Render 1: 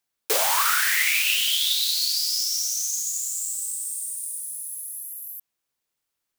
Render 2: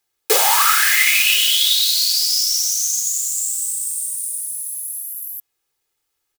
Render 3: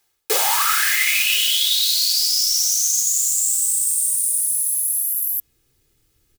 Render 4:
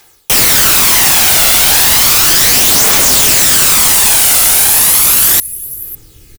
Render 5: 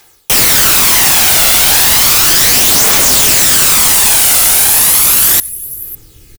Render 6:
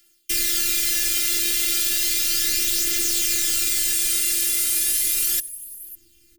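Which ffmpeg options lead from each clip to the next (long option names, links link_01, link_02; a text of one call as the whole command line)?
ffmpeg -i in.wav -af "aecho=1:1:2.4:0.62,volume=5.5dB" out.wav
ffmpeg -i in.wav -af "asubboost=boost=12:cutoff=240,areverse,acompressor=threshold=-24dB:ratio=6,areverse,volume=8dB" out.wav
ffmpeg -i in.wav -af "aecho=1:1:551:0.0631,aeval=exprs='0.531*sin(PI/2*7.94*val(0)/0.531)':channel_layout=same,aphaser=in_gain=1:out_gain=1:delay=1.5:decay=0.36:speed=0.34:type=triangular" out.wav
ffmpeg -i in.wav -filter_complex "[0:a]asplit=2[link_01][link_02];[link_02]adelay=93.29,volume=-27dB,highshelf=frequency=4000:gain=-2.1[link_03];[link_01][link_03]amix=inputs=2:normalize=0" out.wav
ffmpeg -i in.wav -af "afreqshift=-220,afftfilt=real='hypot(re,im)*cos(PI*b)':imag='0':win_size=512:overlap=0.75,asuperstop=centerf=890:order=4:qfactor=0.62,volume=-10dB" out.wav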